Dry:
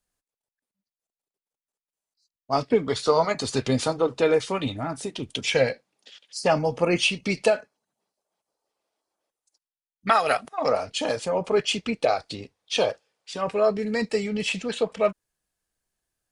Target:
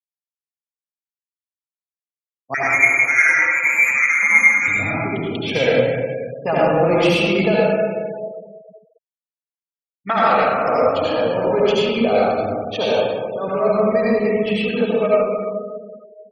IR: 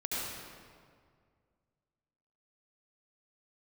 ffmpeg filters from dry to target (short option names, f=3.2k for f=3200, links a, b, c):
-filter_complex "[0:a]aemphasis=mode=reproduction:type=cd,asettb=1/sr,asplit=3[a][b][c];[a]atrim=end=2.544[d];[b]atrim=start=2.54:end=4.68,asetpts=PTS-STARTPTS,afade=t=in:d=0.004:c=qsin,afade=t=out:st=2.136:d=0.004:c=qsin,lowpass=f=2.2k:t=q:w=0.5098,lowpass=f=2.2k:t=q:w=0.6013,lowpass=f=2.2k:t=q:w=0.9,lowpass=f=2.2k:t=q:w=2.563,afreqshift=-2600[e];[c]atrim=start=4.676[f];[d][e]acrossfade=d=0.004:c1=hsin:c2=qsin[g];[g][f]acrossfade=d=0.004:c1=qsin:c2=hsin,acrossover=split=240[h][i];[i]adynamicsmooth=sensitivity=6:basefreq=1.5k[j];[h][j]amix=inputs=2:normalize=0[k];[1:a]atrim=start_sample=2205,asetrate=43218,aresample=44100[l];[k][l]afir=irnorm=-1:irlink=0,afftfilt=real='re*gte(hypot(re,im),0.0224)':imag='im*gte(hypot(re,im),0.0224)':win_size=1024:overlap=0.75,volume=2dB"